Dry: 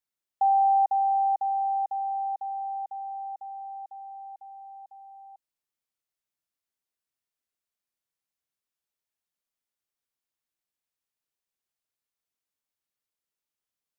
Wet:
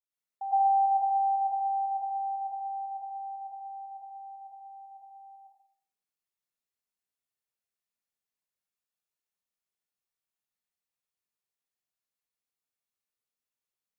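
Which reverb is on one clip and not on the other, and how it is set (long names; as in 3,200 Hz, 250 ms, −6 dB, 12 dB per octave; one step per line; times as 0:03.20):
dense smooth reverb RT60 0.59 s, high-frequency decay 0.85×, pre-delay 90 ms, DRR −10 dB
level −13.5 dB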